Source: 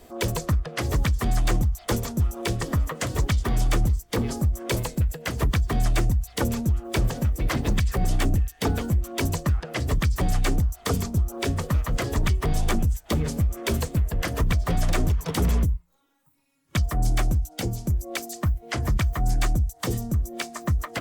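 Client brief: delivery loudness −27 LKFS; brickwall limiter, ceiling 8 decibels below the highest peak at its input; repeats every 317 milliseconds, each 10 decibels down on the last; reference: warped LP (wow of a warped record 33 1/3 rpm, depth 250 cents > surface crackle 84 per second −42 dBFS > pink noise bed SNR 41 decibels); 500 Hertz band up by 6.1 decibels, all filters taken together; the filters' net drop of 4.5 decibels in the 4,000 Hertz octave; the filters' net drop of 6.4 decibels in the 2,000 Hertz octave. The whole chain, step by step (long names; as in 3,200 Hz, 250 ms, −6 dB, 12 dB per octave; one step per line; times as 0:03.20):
parametric band 500 Hz +8 dB
parametric band 2,000 Hz −7.5 dB
parametric band 4,000 Hz −3.5 dB
brickwall limiter −17.5 dBFS
repeating echo 317 ms, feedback 32%, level −10 dB
wow of a warped record 33 1/3 rpm, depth 250 cents
surface crackle 84 per second −42 dBFS
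pink noise bed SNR 41 dB
level +0.5 dB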